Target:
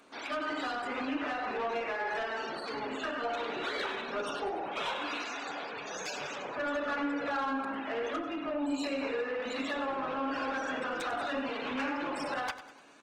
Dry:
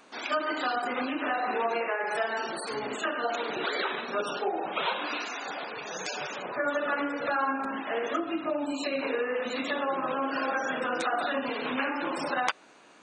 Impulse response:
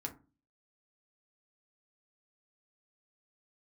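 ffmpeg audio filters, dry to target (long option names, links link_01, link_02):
-filter_complex "[0:a]asettb=1/sr,asplit=3[link_01][link_02][link_03];[link_01]atrim=end=2.084[link_04];[link_02]atrim=start=2.08:end=4.12,asetpts=PTS-STARTPTS,afade=type=in:duration=0.004:curve=qsin,afade=type=out:start_time=2.036:duration=0.004:curve=qsin,lowpass=frequency=5700:width=0.5412,lowpass=frequency=5700:width=1.3066[link_05];[link_03]atrim=start=4.116[link_06];[link_04][link_05]acrossfade=duration=0.004:curve1=hsin:curve2=qsin[link_07];[link_07][link_06]acrossfade=duration=0.004:curve1=qsin:curve2=hsin,asoftclip=type=tanh:threshold=-26dB,aecho=1:1:98|196|294|392|490:0.211|0.101|0.0487|0.0234|0.0112,asplit=2[link_08][link_09];[1:a]atrim=start_sample=2205[link_10];[link_09][link_10]afir=irnorm=-1:irlink=0,volume=-6.5dB[link_11];[link_08][link_11]amix=inputs=2:normalize=0,volume=-5dB" -ar 48000 -c:a libopus -b:a 20k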